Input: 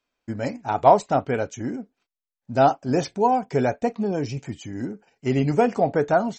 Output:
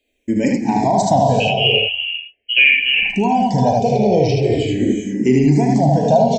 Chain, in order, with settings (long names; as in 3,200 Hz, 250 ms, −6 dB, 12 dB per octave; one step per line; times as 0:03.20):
0:01.40–0:03.10: voice inversion scrambler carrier 3,100 Hz
in parallel at −2 dB: compressor whose output falls as the input rises −24 dBFS
on the sum: Butterworth band-reject 1,300 Hz, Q 1
0:04.42–0:04.85: double-tracking delay 26 ms −3 dB
on a send: ambience of single reflections 39 ms −10.5 dB, 76 ms −3 dB
on the sum: reverb whose tail is shaped and stops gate 420 ms rising, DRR 5 dB
brickwall limiter −8.5 dBFS, peak gain reduction 7 dB
frequency shifter mixed with the dry sound −0.42 Hz
level +6.5 dB